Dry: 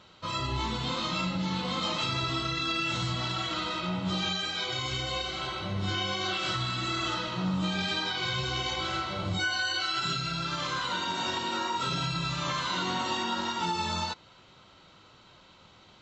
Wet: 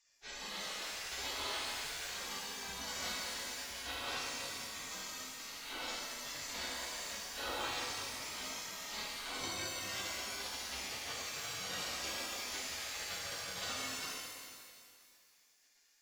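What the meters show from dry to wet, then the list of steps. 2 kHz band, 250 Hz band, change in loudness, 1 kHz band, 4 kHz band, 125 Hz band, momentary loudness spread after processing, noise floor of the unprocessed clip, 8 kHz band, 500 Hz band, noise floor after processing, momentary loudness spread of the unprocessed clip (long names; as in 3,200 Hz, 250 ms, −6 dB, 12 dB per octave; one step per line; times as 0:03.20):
−9.0 dB, −19.5 dB, −10.0 dB, −13.5 dB, −10.0 dB, −24.0 dB, 5 LU, −56 dBFS, +1.5 dB, −10.5 dB, −69 dBFS, 3 LU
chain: gate on every frequency bin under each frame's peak −20 dB weak
reverb with rising layers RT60 2.1 s, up +12 semitones, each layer −8 dB, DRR −3 dB
level −2.5 dB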